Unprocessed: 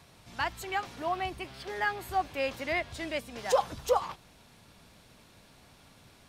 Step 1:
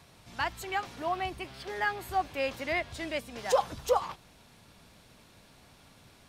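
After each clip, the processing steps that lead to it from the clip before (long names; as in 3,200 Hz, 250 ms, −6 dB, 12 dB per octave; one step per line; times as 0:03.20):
no processing that can be heard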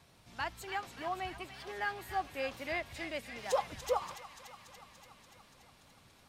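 delay with a high-pass on its return 288 ms, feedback 71%, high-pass 1,400 Hz, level −8.5 dB
tape wow and flutter 26 cents
level −6 dB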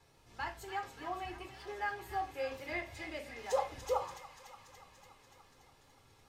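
convolution reverb RT60 0.35 s, pre-delay 4 ms, DRR 3.5 dB
level −8.5 dB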